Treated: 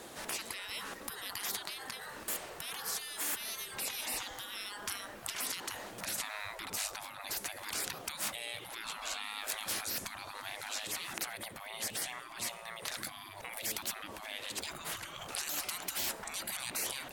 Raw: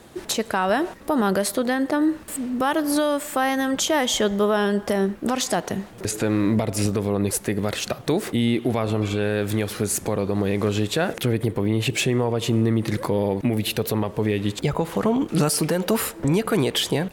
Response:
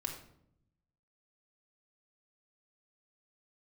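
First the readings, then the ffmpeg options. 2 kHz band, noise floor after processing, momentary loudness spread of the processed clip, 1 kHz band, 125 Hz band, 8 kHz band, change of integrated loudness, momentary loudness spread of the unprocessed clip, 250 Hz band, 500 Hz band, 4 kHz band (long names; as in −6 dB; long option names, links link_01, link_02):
−11.0 dB, −49 dBFS, 6 LU, −16.5 dB, −32.5 dB, −8.0 dB, −15.0 dB, 4 LU, −32.0 dB, −26.5 dB, −9.5 dB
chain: -af "alimiter=limit=-15dB:level=0:latency=1:release=148,bass=frequency=250:gain=-12,treble=frequency=4000:gain=3,afftfilt=real='re*lt(hypot(re,im),0.0398)':imag='im*lt(hypot(re,im),0.0398)':win_size=1024:overlap=0.75"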